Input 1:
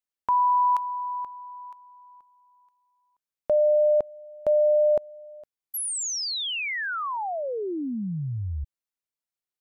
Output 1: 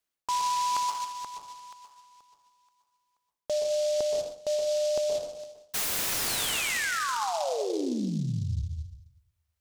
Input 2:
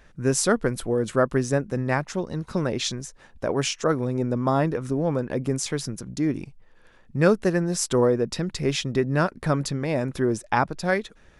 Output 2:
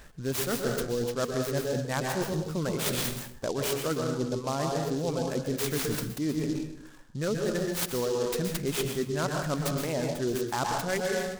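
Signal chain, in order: reverb removal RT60 1.4 s; high shelf 7200 Hz +8.5 dB; in parallel at -3.5 dB: sine folder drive 6 dB, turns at -3.5 dBFS; on the sum: plate-style reverb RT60 0.93 s, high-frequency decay 0.55×, pre-delay 0.11 s, DRR 3 dB; reverse; compressor 10:1, threshold -20 dBFS; reverse; noise-modulated delay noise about 4800 Hz, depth 0.052 ms; gain -6 dB

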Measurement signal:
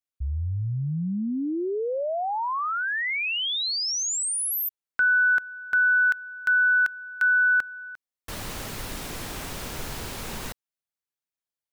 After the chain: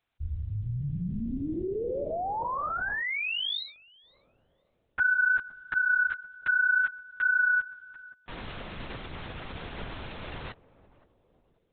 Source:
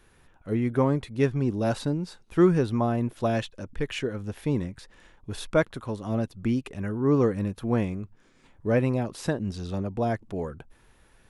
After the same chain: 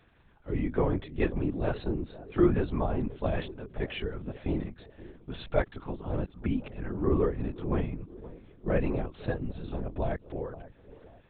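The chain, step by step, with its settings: requantised 12-bit, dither triangular; on a send: narrowing echo 0.525 s, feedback 51%, band-pass 400 Hz, level -15 dB; on the sum: LPC vocoder at 8 kHz whisper; gain -4 dB

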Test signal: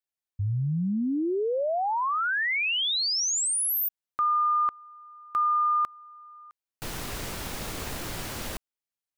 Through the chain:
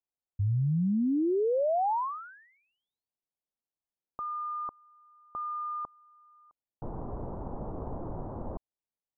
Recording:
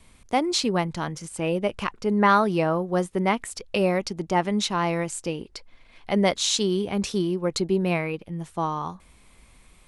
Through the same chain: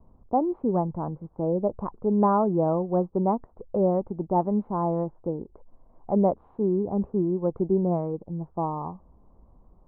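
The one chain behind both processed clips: steep low-pass 980 Hz 36 dB/oct

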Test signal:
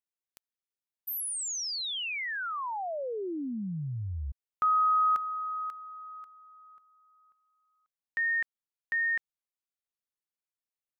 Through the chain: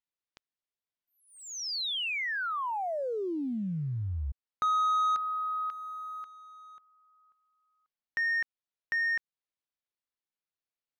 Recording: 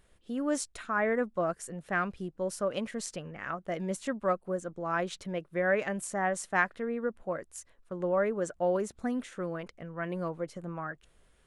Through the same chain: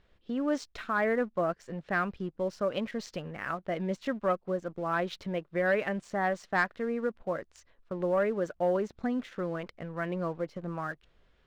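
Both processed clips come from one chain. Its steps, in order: LPF 5000 Hz 24 dB/oct; sample leveller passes 1; in parallel at -2 dB: compressor, threshold -39 dBFS; on the sum: gain -4 dB

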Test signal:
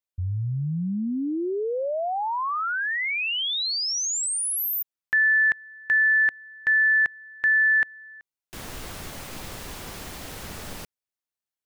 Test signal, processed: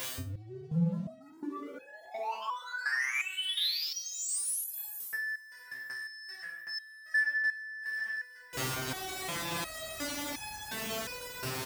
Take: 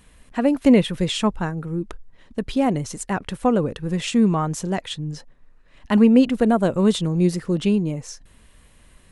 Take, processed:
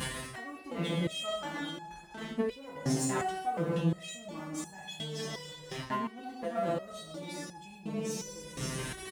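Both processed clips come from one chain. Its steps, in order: high shelf 5800 Hz -3.5 dB; on a send: echo 0.524 s -21.5 dB; on the sum: two-slope reverb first 0.94 s, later 2.5 s, DRR -1.5 dB; upward compressor 4:1, threshold -22 dBFS; flange 0.24 Hz, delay 5.9 ms, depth 2 ms, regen +48%; reverse; compressor 12:1, threshold -33 dBFS; reverse; sample leveller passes 3; HPF 53 Hz 24 dB/oct; stepped resonator 2.8 Hz 130–840 Hz; gain +8.5 dB

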